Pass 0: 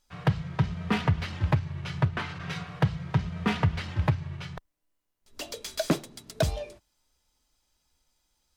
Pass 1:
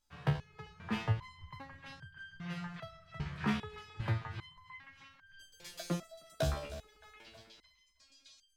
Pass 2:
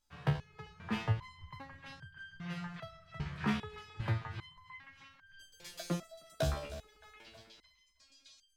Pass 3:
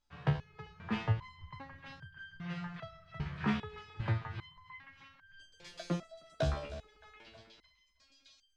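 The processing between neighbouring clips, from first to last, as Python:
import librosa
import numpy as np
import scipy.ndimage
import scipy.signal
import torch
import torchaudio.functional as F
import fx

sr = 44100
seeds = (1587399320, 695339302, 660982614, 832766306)

y1 = fx.reverse_delay_fb(x, sr, ms=157, feedback_pct=77, wet_db=-14.0)
y1 = fx.echo_stepped(y1, sr, ms=618, hz=1300.0, octaves=0.7, feedback_pct=70, wet_db=-1.5)
y1 = fx.resonator_held(y1, sr, hz=2.5, low_hz=72.0, high_hz=1600.0)
y1 = y1 * 10.0 ** (1.0 / 20.0)
y2 = y1
y3 = fx.air_absorb(y2, sr, metres=100.0)
y3 = y3 * 10.0 ** (1.0 / 20.0)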